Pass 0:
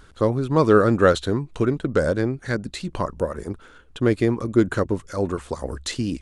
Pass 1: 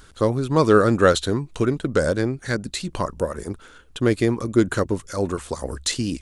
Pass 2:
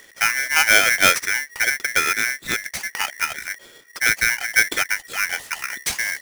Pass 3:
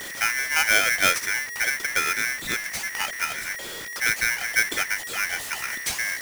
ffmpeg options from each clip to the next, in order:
-af "highshelf=f=3800:g=9"
-af "aeval=exprs='val(0)*sgn(sin(2*PI*1900*n/s))':c=same"
-af "aeval=exprs='val(0)+0.5*0.0631*sgn(val(0))':c=same,volume=0.501"

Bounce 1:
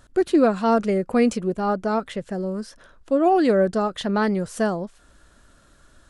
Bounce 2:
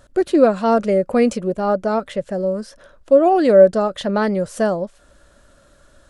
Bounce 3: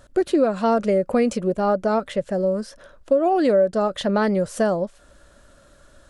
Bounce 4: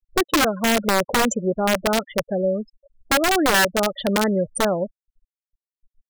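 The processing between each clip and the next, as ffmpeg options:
-af "equalizer=f=570:w=4.8:g=10.5,volume=1.19"
-af "acompressor=threshold=0.178:ratio=5"
-af "afftfilt=real='re*gte(hypot(re,im),0.0562)':imag='im*gte(hypot(re,im),0.0562)':win_size=1024:overlap=0.75,aexciter=amount=7.5:drive=7.6:freq=6200,aeval=exprs='(mod(4.22*val(0)+1,2)-1)/4.22':c=same"

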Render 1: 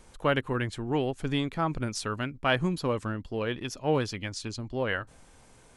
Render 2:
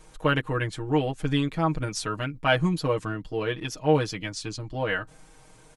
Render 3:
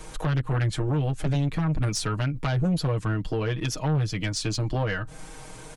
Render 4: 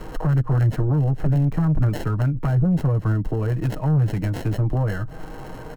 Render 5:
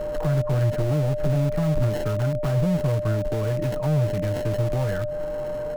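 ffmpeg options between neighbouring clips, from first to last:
-af "aecho=1:1:6.4:0.93"
-filter_complex "[0:a]acrossover=split=160[s0][s1];[s1]acompressor=threshold=0.0158:ratio=10[s2];[s0][s2]amix=inputs=2:normalize=0,aeval=exprs='0.1*sin(PI/2*2.24*val(0)/0.1)':c=same"
-filter_complex "[0:a]acrossover=split=200[s0][s1];[s1]acompressor=threshold=0.0158:ratio=3[s2];[s0][s2]amix=inputs=2:normalize=0,acrossover=split=490|1800[s3][s4][s5];[s5]acrusher=samples=37:mix=1:aa=0.000001[s6];[s3][s4][s6]amix=inputs=3:normalize=0,volume=2.24"
-filter_complex "[0:a]asplit=2[s0][s1];[s1]aeval=exprs='(mod(10.6*val(0)+1,2)-1)/10.6':c=same,volume=0.282[s2];[s0][s2]amix=inputs=2:normalize=0,aeval=exprs='val(0)+0.0708*sin(2*PI*600*n/s)':c=same,volume=0.668"

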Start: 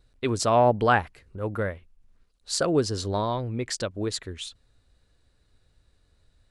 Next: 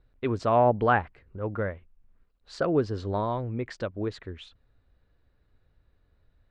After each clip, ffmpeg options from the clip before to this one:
-af "lowpass=2200,volume=0.841"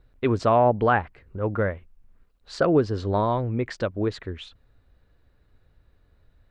-af "alimiter=limit=0.188:level=0:latency=1:release=421,volume=1.88"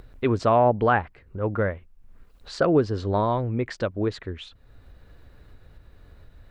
-af "acompressor=mode=upward:threshold=0.0158:ratio=2.5"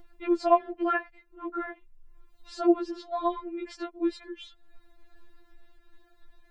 -af "afftfilt=real='re*4*eq(mod(b,16),0)':imag='im*4*eq(mod(b,16),0)':win_size=2048:overlap=0.75,volume=0.708"

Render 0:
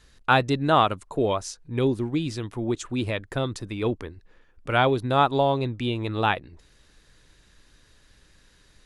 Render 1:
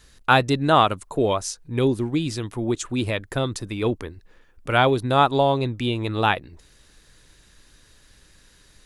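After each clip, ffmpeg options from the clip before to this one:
-af "highshelf=f=8200:g=9.5,volume=1.33"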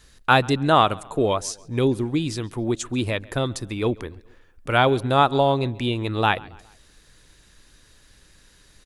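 -filter_complex "[0:a]asplit=2[s0][s1];[s1]adelay=137,lowpass=f=4900:p=1,volume=0.0708,asplit=2[s2][s3];[s3]adelay=137,lowpass=f=4900:p=1,volume=0.48,asplit=2[s4][s5];[s5]adelay=137,lowpass=f=4900:p=1,volume=0.48[s6];[s0][s2][s4][s6]amix=inputs=4:normalize=0"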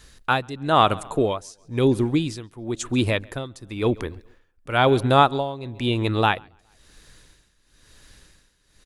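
-af "tremolo=f=0.99:d=0.84,volume=1.5"

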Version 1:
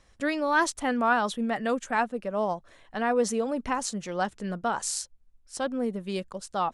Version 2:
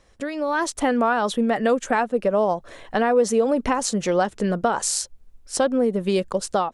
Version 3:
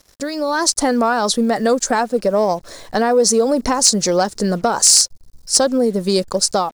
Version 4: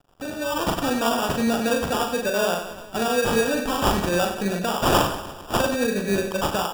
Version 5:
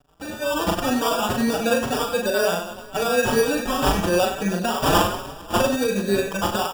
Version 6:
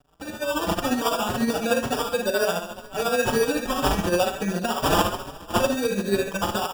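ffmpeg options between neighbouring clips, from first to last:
-af "acompressor=threshold=0.0224:ratio=4,equalizer=f=460:t=o:w=1.2:g=5.5,dynaudnorm=f=330:g=3:m=3.16,volume=1.26"
-af "highshelf=f=3700:t=q:w=3:g=8,acrusher=bits=7:mix=0:aa=0.5,acontrast=39,volume=0.891"
-filter_complex "[0:a]acrusher=samples=21:mix=1:aa=0.000001,asplit=2[s0][s1];[s1]aecho=0:1:40|96|174.4|284.2|437.8:0.631|0.398|0.251|0.158|0.1[s2];[s0][s2]amix=inputs=2:normalize=0,volume=0.376"
-filter_complex "[0:a]asplit=2[s0][s1];[s1]adelay=4.9,afreqshift=2.1[s2];[s0][s2]amix=inputs=2:normalize=1,volume=1.58"
-af "tremolo=f=14:d=0.51"

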